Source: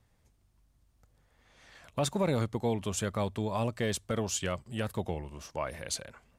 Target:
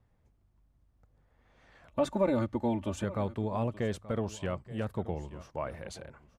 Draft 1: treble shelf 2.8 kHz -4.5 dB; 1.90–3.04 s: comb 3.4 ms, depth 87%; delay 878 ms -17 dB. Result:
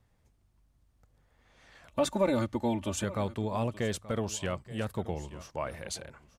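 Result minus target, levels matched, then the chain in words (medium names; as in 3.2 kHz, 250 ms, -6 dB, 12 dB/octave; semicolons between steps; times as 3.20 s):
4 kHz band +7.0 dB
treble shelf 2.8 kHz -16.5 dB; 1.90–3.04 s: comb 3.4 ms, depth 87%; delay 878 ms -17 dB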